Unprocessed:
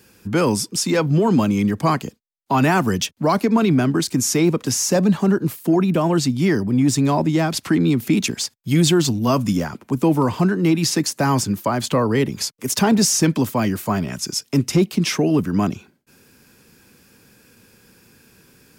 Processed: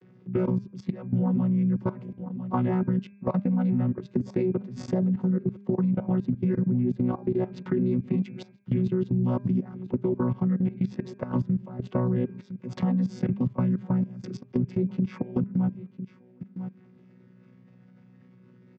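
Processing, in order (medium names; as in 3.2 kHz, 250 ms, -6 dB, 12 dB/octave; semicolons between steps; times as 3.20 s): vocoder on a held chord bare fifth, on B2; low-pass 2.9 kHz 12 dB/octave; on a send: delay 1000 ms -23.5 dB; on the sum: level held to a coarse grid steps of 21 dB; high-pass 130 Hz; bass shelf 230 Hz +9.5 dB; de-hum 200.5 Hz, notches 13; compression 2.5:1, threshold -32 dBFS, peak gain reduction 12 dB; trim +4.5 dB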